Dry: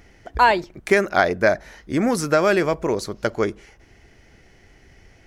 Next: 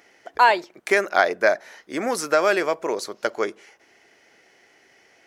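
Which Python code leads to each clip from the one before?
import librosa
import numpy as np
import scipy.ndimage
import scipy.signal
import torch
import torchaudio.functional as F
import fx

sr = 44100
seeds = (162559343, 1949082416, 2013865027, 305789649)

y = scipy.signal.sosfilt(scipy.signal.butter(2, 430.0, 'highpass', fs=sr, output='sos'), x)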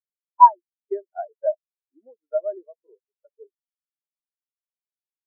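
y = fx.high_shelf(x, sr, hz=2800.0, db=-12.0)
y = fx.spectral_expand(y, sr, expansion=4.0)
y = y * librosa.db_to_amplitude(3.0)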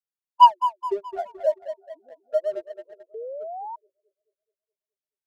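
y = fx.echo_tape(x, sr, ms=214, feedback_pct=56, wet_db=-9.5, lp_hz=1400.0, drive_db=4.0, wow_cents=35)
y = fx.leveller(y, sr, passes=1)
y = fx.spec_paint(y, sr, seeds[0], shape='rise', start_s=3.14, length_s=0.62, low_hz=430.0, high_hz=960.0, level_db=-31.0)
y = y * librosa.db_to_amplitude(-3.0)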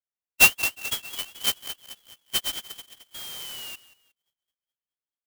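y = fx.echo_feedback(x, sr, ms=181, feedback_pct=28, wet_db=-18.0)
y = fx.freq_invert(y, sr, carrier_hz=3700)
y = fx.clock_jitter(y, sr, seeds[1], jitter_ms=0.046)
y = y * librosa.db_to_amplitude(-3.5)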